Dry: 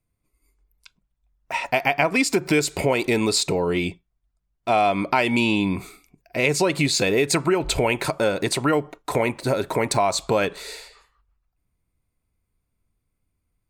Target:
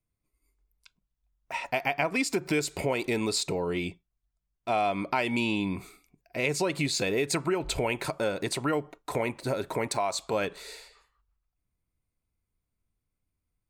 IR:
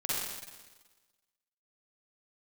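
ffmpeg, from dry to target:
-filter_complex "[0:a]asettb=1/sr,asplit=3[link_01][link_02][link_03];[link_01]atrim=end=9.884[link_04];[link_02]atrim=start=9.88:end=10.33,asetpts=PTS-STARTPTS,afade=type=in:duration=0.004:curve=qsin,afade=type=out:start_time=0.446:duration=0.004:curve=qsin,lowshelf=frequency=220:gain=-9[link_05];[link_03]atrim=start=10.326[link_06];[link_04][link_05]acrossfade=duration=0.004:curve1=hsin:curve2=qsin[link_07];[link_07][link_06]acrossfade=duration=0.004:curve1=qsin:curve2=hsin,volume=-7.5dB"

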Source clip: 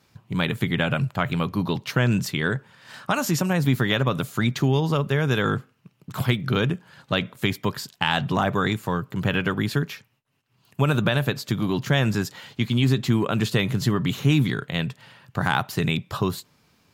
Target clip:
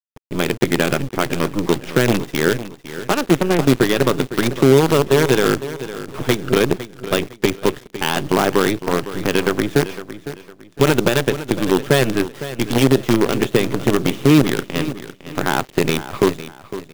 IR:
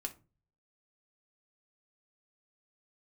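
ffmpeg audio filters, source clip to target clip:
-filter_complex "[0:a]deesser=0.6,aresample=8000,aresample=44100,acrossover=split=130[link_01][link_02];[link_01]asoftclip=type=tanh:threshold=-31dB[link_03];[link_03][link_02]amix=inputs=2:normalize=0,acrusher=bits=4:dc=4:mix=0:aa=0.000001,equalizer=frequency=380:width_type=o:width=1:gain=10,asplit=2[link_04][link_05];[link_05]aecho=0:1:507|1014|1521:0.211|0.0676|0.0216[link_06];[link_04][link_06]amix=inputs=2:normalize=0,volume=3dB"

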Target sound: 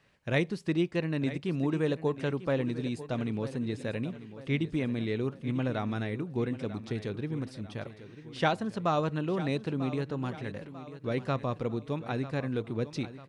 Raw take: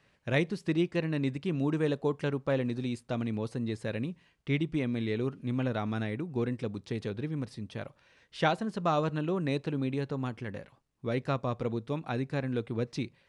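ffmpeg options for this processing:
ffmpeg -i in.wav -af "aecho=1:1:944|1888|2832|3776:0.2|0.0918|0.0422|0.0194" out.wav

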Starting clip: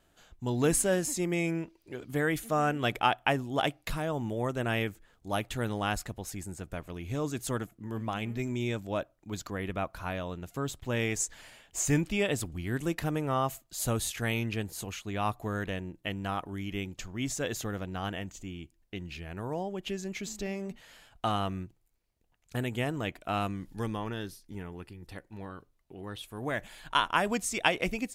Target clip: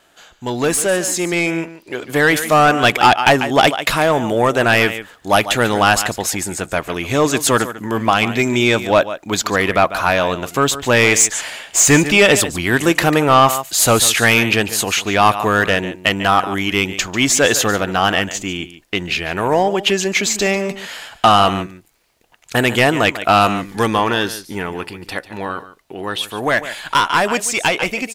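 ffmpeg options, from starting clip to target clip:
ffmpeg -i in.wav -filter_complex "[0:a]aecho=1:1:145:0.178,asplit=2[link_01][link_02];[link_02]highpass=frequency=720:poles=1,volume=22dB,asoftclip=type=tanh:threshold=-7dB[link_03];[link_01][link_03]amix=inputs=2:normalize=0,lowpass=frequency=7100:poles=1,volume=-6dB,dynaudnorm=framelen=360:gausssize=11:maxgain=9dB,volume=1dB" out.wav

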